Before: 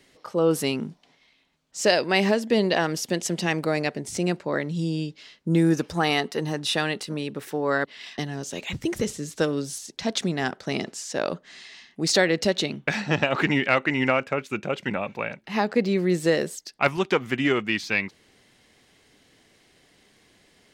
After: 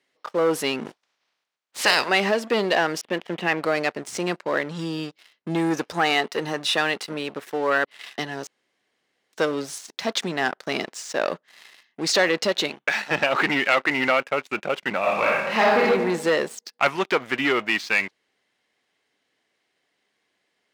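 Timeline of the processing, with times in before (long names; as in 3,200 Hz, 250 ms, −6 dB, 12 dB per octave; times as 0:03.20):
0:00.85–0:02.08: ceiling on every frequency bin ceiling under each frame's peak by 22 dB
0:03.01–0:03.64: Butterworth low-pass 3,300 Hz
0:08.47–0:09.33: fill with room tone
0:12.69–0:13.10: high-pass filter 290 Hz → 880 Hz 6 dB per octave
0:15.00–0:15.84: thrown reverb, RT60 1 s, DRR −5.5 dB
whole clip: leveller curve on the samples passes 3; high-pass filter 930 Hz 6 dB per octave; high-shelf EQ 3,500 Hz −11 dB; level −2 dB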